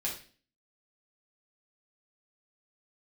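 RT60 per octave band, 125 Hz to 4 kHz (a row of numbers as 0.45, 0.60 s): 0.55, 0.55, 0.45, 0.35, 0.40, 0.45 s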